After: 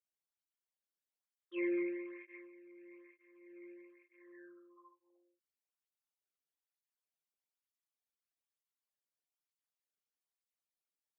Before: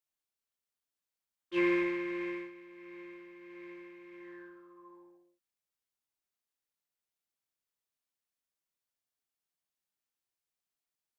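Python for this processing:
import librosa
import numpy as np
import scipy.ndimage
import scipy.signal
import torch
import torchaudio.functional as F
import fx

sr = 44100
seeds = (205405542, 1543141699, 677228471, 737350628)

y = fx.envelope_sharpen(x, sr, power=2.0)
y = fx.flanger_cancel(y, sr, hz=1.1, depth_ms=1.2)
y = y * librosa.db_to_amplitude(-4.5)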